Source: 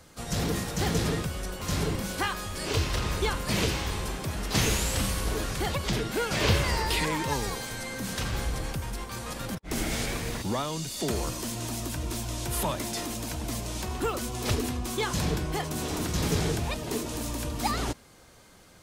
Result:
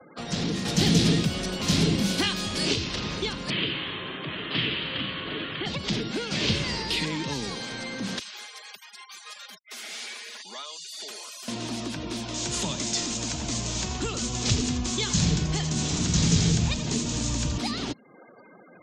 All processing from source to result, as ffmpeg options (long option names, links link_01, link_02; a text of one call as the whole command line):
ffmpeg -i in.wav -filter_complex "[0:a]asettb=1/sr,asplit=3[link_01][link_02][link_03];[link_01]atrim=end=0.654[link_04];[link_02]atrim=start=0.65:end=2.74,asetpts=PTS-STARTPTS,afade=type=in:duration=0.004:curve=qsin,afade=type=out:start_time=2.086:duration=0.004:curve=qsin,equalizer=frequency=730:width=6.2:gain=10.5,bandreject=frequency=750:width=9.6,acontrast=86[link_05];[link_03]atrim=start=2.736[link_06];[link_04][link_05]acrossfade=duration=0.004:curve1=hsin:curve2=qsin[link_07];[link_07][link_06]acrossfade=duration=0.004:curve1=qsin:curve2=hsin,asettb=1/sr,asplit=3[link_08][link_09][link_10];[link_08]atrim=end=3.504[link_11];[link_09]atrim=start=3.5:end=5.66,asetpts=PTS-STARTPTS,afade=type=in:duration=0.004:curve=qsin,afade=type=out:start_time=2.156:duration=0.004:curve=qsin,highpass=120,equalizer=frequency=210:width_type=q:width=4:gain=-10,equalizer=frequency=470:width_type=q:width=4:gain=-3,equalizer=frequency=800:width_type=q:width=4:gain=-7,equalizer=frequency=1200:width_type=q:width=4:gain=3,equalizer=frequency=1800:width_type=q:width=4:gain=4,equalizer=frequency=3100:width_type=q:width=4:gain=8,lowpass=frequency=3200:width=0.5412,lowpass=frequency=3200:width=1.3066,aecho=1:1:757:0.211,atrim=end_sample=95256[link_12];[link_10]atrim=start=5.656[link_13];[link_11][link_12]acrossfade=duration=0.004:curve1=hsin:curve2=qsin[link_14];[link_14][link_13]acrossfade=duration=0.004:curve1=qsin:curve2=hsin,asettb=1/sr,asplit=3[link_15][link_16][link_17];[link_15]atrim=end=8.194[link_18];[link_16]atrim=start=8.19:end=11.48,asetpts=PTS-STARTPTS,afade=type=in:duration=0.004:curve=qsin,afade=type=out:start_time=3.286:duration=0.004:curve=qsin,aderivative,aecho=1:1:4.8:0.46,atrim=end_sample=145089,asoftclip=type=hard:threshold=-35dB[link_19];[link_17]atrim=start=11.476[link_20];[link_18][link_19]acrossfade=duration=0.004:curve1=hsin:curve2=qsin[link_21];[link_21][link_20]acrossfade=duration=0.004:curve1=qsin:curve2=hsin,asettb=1/sr,asplit=3[link_22][link_23][link_24];[link_22]atrim=end=12.344[link_25];[link_23]atrim=start=12.34:end=17.58,asetpts=PTS-STARTPTS,afade=type=in:duration=0.004:curve=qsin,afade=type=out:start_time=5.236:duration=0.004:curve=qsin,asubboost=boost=6.5:cutoff=140,lowpass=frequency=7000:width_type=q:width=4.2,aecho=1:1:85:0.266,atrim=end_sample=231084[link_26];[link_24]atrim=start=17.576[link_27];[link_25][link_26]acrossfade=duration=0.004:curve1=hsin:curve2=qsin[link_28];[link_28][link_27]acrossfade=duration=0.004:curve1=qsin:curve2=hsin,acrossover=split=170 4900:gain=0.0891 1 0.158[link_29][link_30][link_31];[link_29][link_30][link_31]amix=inputs=3:normalize=0,afftfilt=real='re*gte(hypot(re,im),0.00282)':imag='im*gte(hypot(re,im),0.00282)':win_size=1024:overlap=0.75,acrossover=split=270|3000[link_32][link_33][link_34];[link_33]acompressor=threshold=-46dB:ratio=6[link_35];[link_32][link_35][link_34]amix=inputs=3:normalize=0,volume=8.5dB" out.wav